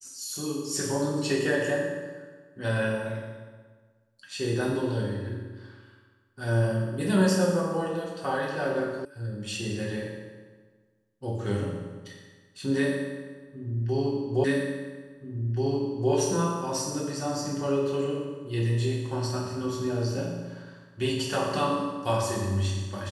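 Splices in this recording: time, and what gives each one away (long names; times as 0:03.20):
0:09.05: cut off before it has died away
0:14.44: the same again, the last 1.68 s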